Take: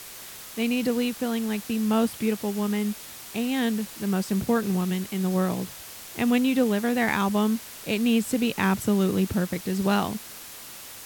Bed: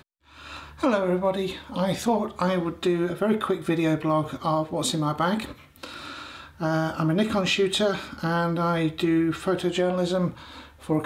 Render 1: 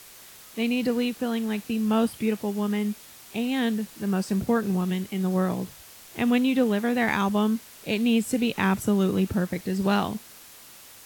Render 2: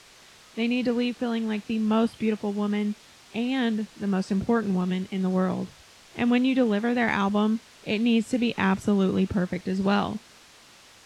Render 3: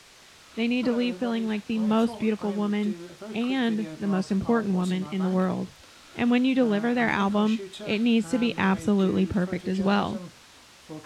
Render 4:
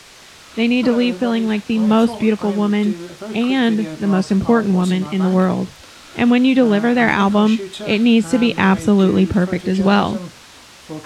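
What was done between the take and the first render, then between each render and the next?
noise print and reduce 6 dB
LPF 5700 Hz 12 dB/oct
add bed -16 dB
gain +9.5 dB; limiter -3 dBFS, peak gain reduction 2.5 dB

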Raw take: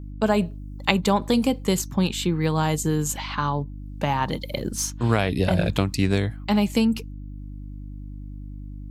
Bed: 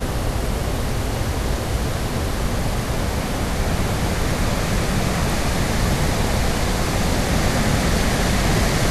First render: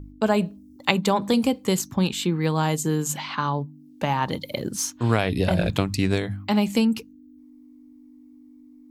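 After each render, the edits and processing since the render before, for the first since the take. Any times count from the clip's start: de-hum 50 Hz, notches 4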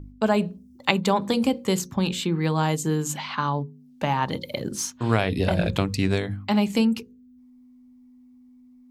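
high shelf 8800 Hz -6 dB; notches 60/120/180/240/300/360/420/480/540 Hz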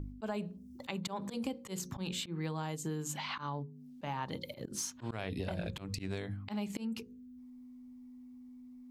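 auto swell 0.224 s; compressor 5:1, threshold -36 dBFS, peak gain reduction 16 dB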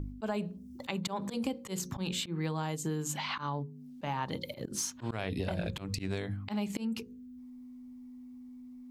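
gain +3.5 dB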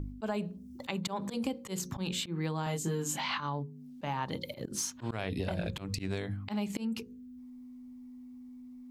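2.64–3.41 doubler 24 ms -2.5 dB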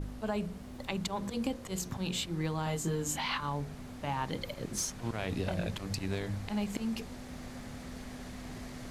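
add bed -27 dB

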